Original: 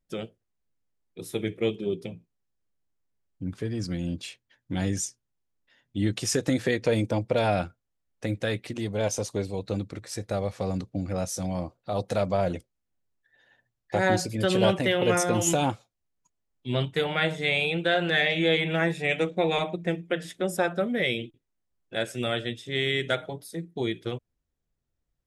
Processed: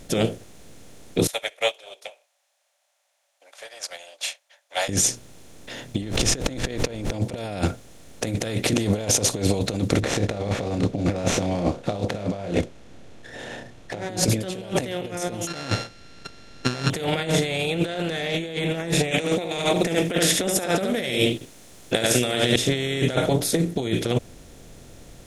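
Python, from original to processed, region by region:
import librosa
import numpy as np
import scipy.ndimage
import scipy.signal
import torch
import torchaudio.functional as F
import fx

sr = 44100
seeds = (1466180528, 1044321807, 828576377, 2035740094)

y = fx.chain(x, sr, fx.cheby_ripple_highpass(hz=560.0, ripple_db=3),
    fx.upward_expand(threshold_db=-52.0, expansion=2.5), at=(1.27, 4.89))
y = fx.bessel_lowpass(y, sr, hz=4500.0, order=2, at=(6.01, 7.1), fade=0.02)
y = fx.dmg_noise_colour(y, sr, seeds[0], colour='brown', level_db=-40.0, at=(6.01, 7.1), fade=0.02)
y = fx.sustainer(y, sr, db_per_s=77.0, at=(6.01, 7.1), fade=0.02)
y = fx.chain(y, sr, fx.median_filter(points=9),
    fx.lowpass(hz=4900.0, slope=12),
    fx.doubler(ms=29.0, db=-5.0), at=(10.0, 14.09))
y = fx.chain(y, sr, fx.sample_sort(block=32),
    fx.lowpass_res(hz=4600.0, q=2.4),
    fx.peak_eq(hz=1700.0, db=12.5, octaves=0.55), at=(15.47, 16.9))
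y = fx.chain(y, sr, fx.tilt_eq(slope=2.0),
    fx.echo_single(ms=72, db=-6.0), at=(19.11, 22.56))
y = fx.bin_compress(y, sr, power=0.6)
y = fx.peak_eq(y, sr, hz=1600.0, db=-8.0, octaves=1.8)
y = fx.over_compress(y, sr, threshold_db=-29.0, ratio=-0.5)
y = y * librosa.db_to_amplitude(6.5)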